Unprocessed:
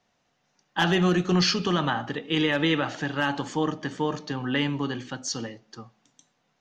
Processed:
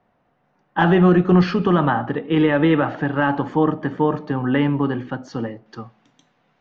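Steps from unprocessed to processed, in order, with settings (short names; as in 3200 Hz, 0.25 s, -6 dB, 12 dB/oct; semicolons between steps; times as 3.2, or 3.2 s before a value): LPF 1400 Hz 12 dB/oct, from 5.66 s 2800 Hz; gain +8.5 dB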